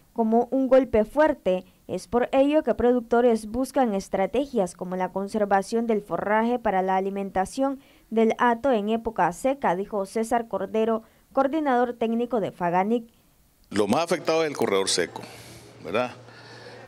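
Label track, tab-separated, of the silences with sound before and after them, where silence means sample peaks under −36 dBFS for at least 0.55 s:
13.020000	13.720000	silence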